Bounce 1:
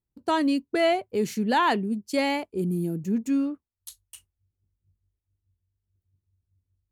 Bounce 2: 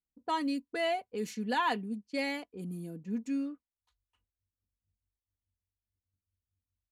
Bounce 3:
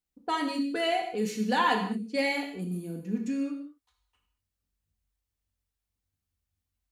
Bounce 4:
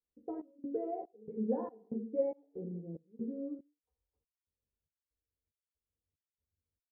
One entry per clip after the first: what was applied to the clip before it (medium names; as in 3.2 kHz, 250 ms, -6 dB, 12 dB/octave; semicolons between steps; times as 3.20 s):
level-controlled noise filter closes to 670 Hz, open at -22 dBFS; bass shelf 460 Hz -5.5 dB; comb 4.1 ms, depth 57%; trim -8 dB
gated-style reverb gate 250 ms falling, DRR 2 dB; trim +3.5 dB
four-pole ladder low-pass 540 Hz, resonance 60%; trance gate "xxxxx..." 188 bpm -24 dB; doubling 13 ms -3 dB; trim +1 dB